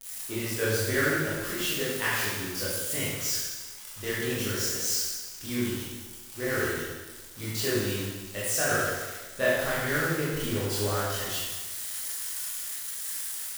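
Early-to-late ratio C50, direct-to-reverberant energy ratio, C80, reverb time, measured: -2.5 dB, -9.5 dB, 0.5 dB, 1.3 s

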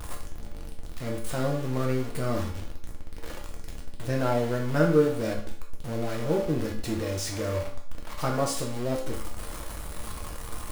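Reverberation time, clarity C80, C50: 0.55 s, 10.5 dB, 6.0 dB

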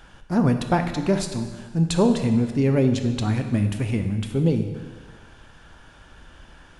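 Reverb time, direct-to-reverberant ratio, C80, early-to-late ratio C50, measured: 1.5 s, 6.0 dB, 9.5 dB, 8.0 dB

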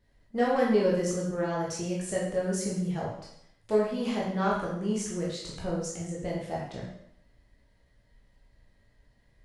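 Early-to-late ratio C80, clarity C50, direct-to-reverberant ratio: 5.5 dB, 2.5 dB, -5.5 dB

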